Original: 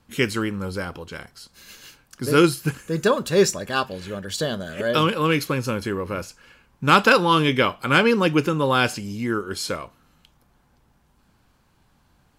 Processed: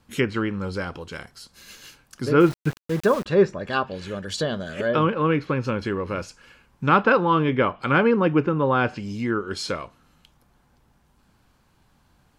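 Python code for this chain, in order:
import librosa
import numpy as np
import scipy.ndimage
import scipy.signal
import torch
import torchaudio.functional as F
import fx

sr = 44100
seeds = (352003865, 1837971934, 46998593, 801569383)

y = fx.cheby1_lowpass(x, sr, hz=10000.0, order=4, at=(6.87, 7.53))
y = fx.env_lowpass_down(y, sr, base_hz=1600.0, full_db=-17.5)
y = fx.sample_gate(y, sr, floor_db=-31.5, at=(2.4, 3.26))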